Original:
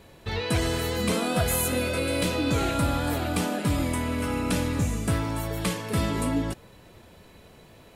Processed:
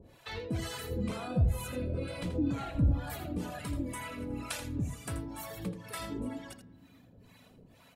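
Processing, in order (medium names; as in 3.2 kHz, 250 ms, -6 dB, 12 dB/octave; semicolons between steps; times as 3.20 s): reverb removal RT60 1.6 s; 0.90–3.10 s: tilt EQ -3 dB/octave; in parallel at +1.5 dB: compression, threshold -34 dBFS, peak gain reduction 19.5 dB; on the sum: saturation -9.5 dBFS, distortion -21 dB; harmonic tremolo 2.1 Hz, depth 100%, crossover 590 Hz; delay 82 ms -10 dB; on a send at -17 dB: reverberation RT60 3.6 s, pre-delay 4 ms; on the sum: trim -7.5 dB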